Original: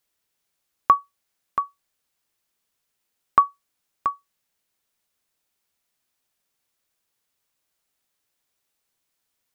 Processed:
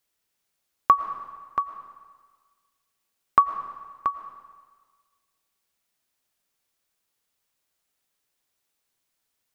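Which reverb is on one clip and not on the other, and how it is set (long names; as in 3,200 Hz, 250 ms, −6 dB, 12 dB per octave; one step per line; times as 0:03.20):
comb and all-pass reverb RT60 1.5 s, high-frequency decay 1×, pre-delay 70 ms, DRR 10.5 dB
level −1 dB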